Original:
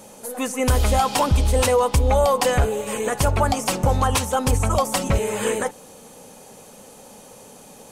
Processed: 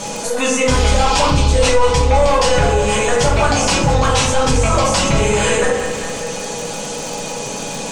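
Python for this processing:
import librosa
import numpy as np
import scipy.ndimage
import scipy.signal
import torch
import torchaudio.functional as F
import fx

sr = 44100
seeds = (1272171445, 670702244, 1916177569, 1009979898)

y = fx.tilt_eq(x, sr, slope=2.0)
y = np.clip(y, -10.0 ** (-17.0 / 20.0), 10.0 ** (-17.0 / 20.0))
y = scipy.signal.sosfilt(scipy.signal.butter(4, 7000.0, 'lowpass', fs=sr, output='sos'), y)
y = fx.low_shelf(y, sr, hz=140.0, db=7.0)
y = y + 0.33 * np.pad(y, (int(6.1 * sr / 1000.0), 0))[:len(y)]
y = fx.echo_feedback(y, sr, ms=196, feedback_pct=54, wet_db=-14.0)
y = fx.room_shoebox(y, sr, seeds[0], volume_m3=73.0, walls='mixed', distance_m=1.3)
y = fx.dmg_crackle(y, sr, seeds[1], per_s=80.0, level_db=-34.0)
y = fx.env_flatten(y, sr, amount_pct=50)
y = y * librosa.db_to_amplitude(-3.0)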